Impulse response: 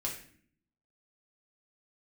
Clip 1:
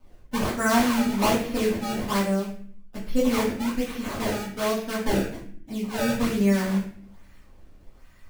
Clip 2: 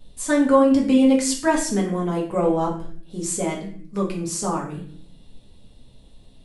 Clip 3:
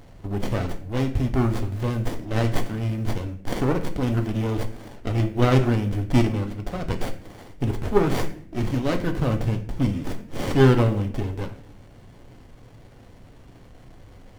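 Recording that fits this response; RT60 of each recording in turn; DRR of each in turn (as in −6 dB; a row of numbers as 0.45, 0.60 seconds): 2; 0.55, 0.55, 0.55 seconds; −9.5, −3.0, 5.5 decibels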